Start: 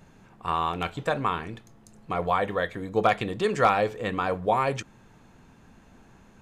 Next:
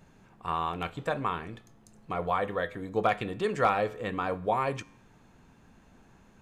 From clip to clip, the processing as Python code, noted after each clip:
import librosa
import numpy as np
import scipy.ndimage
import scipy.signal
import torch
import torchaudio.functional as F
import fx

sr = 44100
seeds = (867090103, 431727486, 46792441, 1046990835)

y = fx.dynamic_eq(x, sr, hz=5700.0, q=0.92, threshold_db=-49.0, ratio=4.0, max_db=-4)
y = fx.comb_fb(y, sr, f0_hz=56.0, decay_s=0.69, harmonics='odd', damping=0.0, mix_pct=40)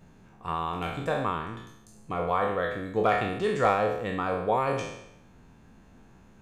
y = fx.spec_trails(x, sr, decay_s=0.81)
y = fx.low_shelf(y, sr, hz=470.0, db=4.0)
y = y * 10.0 ** (-2.0 / 20.0)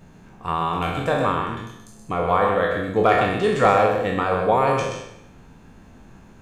y = x + 10.0 ** (-5.5 / 20.0) * np.pad(x, (int(127 * sr / 1000.0), 0))[:len(x)]
y = y * 10.0 ** (6.5 / 20.0)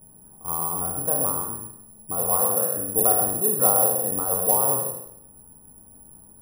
y = scipy.signal.sosfilt(scipy.signal.cheby1(2, 1.0, [950.0, 7400.0], 'bandstop', fs=sr, output='sos'), x)
y = (np.kron(scipy.signal.resample_poly(y, 1, 4), np.eye(4)[0]) * 4)[:len(y)]
y = y * 10.0 ** (-7.5 / 20.0)